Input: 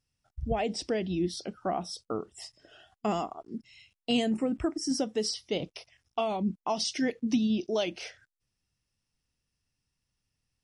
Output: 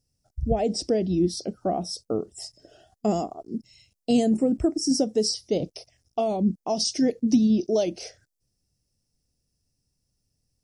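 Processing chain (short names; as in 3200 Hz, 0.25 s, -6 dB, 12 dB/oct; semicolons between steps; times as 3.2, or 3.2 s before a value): band shelf 1800 Hz -13.5 dB 2.3 oct; gain +7 dB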